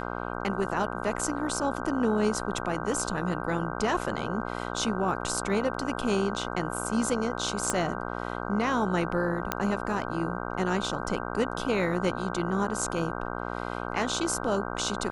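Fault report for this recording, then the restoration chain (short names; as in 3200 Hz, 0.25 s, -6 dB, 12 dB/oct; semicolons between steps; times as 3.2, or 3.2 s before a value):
buzz 60 Hz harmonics 26 -34 dBFS
7.7 pop -13 dBFS
9.52 pop -10 dBFS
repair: de-click; de-hum 60 Hz, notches 26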